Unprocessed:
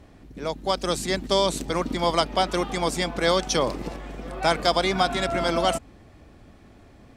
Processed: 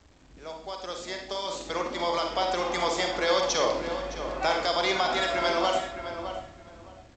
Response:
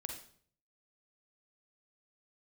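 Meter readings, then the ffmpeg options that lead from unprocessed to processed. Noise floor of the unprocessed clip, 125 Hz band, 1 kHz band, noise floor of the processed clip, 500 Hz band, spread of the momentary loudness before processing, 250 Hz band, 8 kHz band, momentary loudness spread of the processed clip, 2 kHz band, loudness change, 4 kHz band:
−51 dBFS, −12.5 dB, −2.5 dB, −54 dBFS, −3.0 dB, 11 LU, −7.5 dB, −4.0 dB, 13 LU, −1.0 dB, −3.5 dB, −3.0 dB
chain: -filter_complex "[0:a]acrossover=split=370[link_01][link_02];[link_01]acompressor=threshold=-43dB:ratio=12[link_03];[link_03][link_02]amix=inputs=2:normalize=0,alimiter=limit=-15dB:level=0:latency=1:release=125,dynaudnorm=framelen=690:gausssize=5:maxgain=11.5dB,aresample=16000,acrusher=bits=7:mix=0:aa=0.000001,aresample=44100,asplit=2[link_04][link_05];[link_05]adelay=613,lowpass=frequency=2400:poles=1,volume=-9dB,asplit=2[link_06][link_07];[link_07]adelay=613,lowpass=frequency=2400:poles=1,volume=0.2,asplit=2[link_08][link_09];[link_09]adelay=613,lowpass=frequency=2400:poles=1,volume=0.2[link_10];[link_04][link_06][link_08][link_10]amix=inputs=4:normalize=0[link_11];[1:a]atrim=start_sample=2205[link_12];[link_11][link_12]afir=irnorm=-1:irlink=0,volume=-7.5dB"

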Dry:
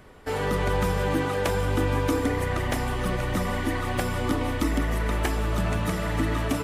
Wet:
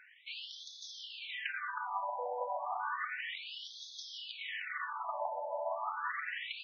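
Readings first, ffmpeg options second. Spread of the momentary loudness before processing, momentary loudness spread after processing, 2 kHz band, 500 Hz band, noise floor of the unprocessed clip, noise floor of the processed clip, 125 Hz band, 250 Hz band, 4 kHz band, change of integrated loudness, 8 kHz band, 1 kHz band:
3 LU, 8 LU, −8.0 dB, −15.0 dB, −29 dBFS, −52 dBFS, below −40 dB, below −40 dB, −5.5 dB, −13.0 dB, −18.0 dB, −7.0 dB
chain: -af "alimiter=limit=-19dB:level=0:latency=1:release=133,afftfilt=real='re*between(b*sr/1024,700*pow(4700/700,0.5+0.5*sin(2*PI*0.32*pts/sr))/1.41,700*pow(4700/700,0.5+0.5*sin(2*PI*0.32*pts/sr))*1.41)':imag='im*between(b*sr/1024,700*pow(4700/700,0.5+0.5*sin(2*PI*0.32*pts/sr))/1.41,700*pow(4700/700,0.5+0.5*sin(2*PI*0.32*pts/sr))*1.41)':win_size=1024:overlap=0.75,volume=1dB"

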